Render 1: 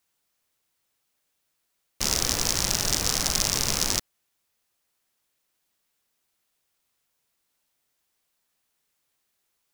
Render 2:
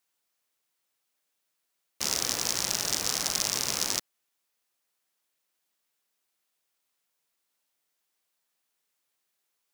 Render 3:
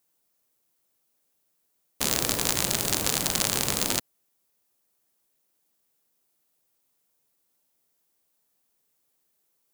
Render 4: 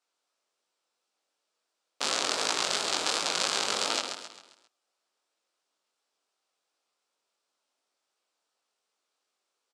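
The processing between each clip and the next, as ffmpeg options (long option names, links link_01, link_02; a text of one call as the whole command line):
ffmpeg -i in.wav -af "highpass=frequency=270:poles=1,volume=-3.5dB" out.wav
ffmpeg -i in.wav -af "crystalizer=i=3:c=0,tiltshelf=frequency=970:gain=9.5,aeval=exprs='0.596*(cos(1*acos(clip(val(0)/0.596,-1,1)))-cos(1*PI/2))+0.168*(cos(4*acos(clip(val(0)/0.596,-1,1)))-cos(4*PI/2))+0.0668*(cos(6*acos(clip(val(0)/0.596,-1,1)))-cos(6*PI/2))+0.188*(cos(7*acos(clip(val(0)/0.596,-1,1)))-cos(7*PI/2))':channel_layout=same" out.wav
ffmpeg -i in.wav -filter_complex "[0:a]highpass=470,equalizer=frequency=1300:width_type=q:width=4:gain=4,equalizer=frequency=1900:width_type=q:width=4:gain=-4,equalizer=frequency=6500:width_type=q:width=4:gain=-5,lowpass=frequency=7000:width=0.5412,lowpass=frequency=7000:width=1.3066,asplit=2[link_01][link_02];[link_02]aecho=0:1:133|266|399|532|665:0.447|0.197|0.0865|0.0381|0.0167[link_03];[link_01][link_03]amix=inputs=2:normalize=0,flanger=delay=17.5:depth=6.4:speed=2.8,volume=3.5dB" out.wav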